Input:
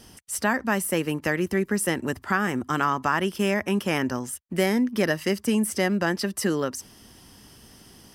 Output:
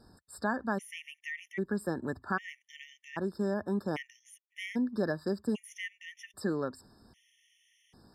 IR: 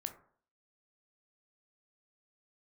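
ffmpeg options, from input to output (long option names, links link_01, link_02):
-af "aemphasis=mode=reproduction:type=50fm,afftfilt=real='re*gt(sin(2*PI*0.63*pts/sr)*(1-2*mod(floor(b*sr/1024/1800),2)),0)':imag='im*gt(sin(2*PI*0.63*pts/sr)*(1-2*mod(floor(b*sr/1024/1800),2)),0)':win_size=1024:overlap=0.75,volume=-7.5dB"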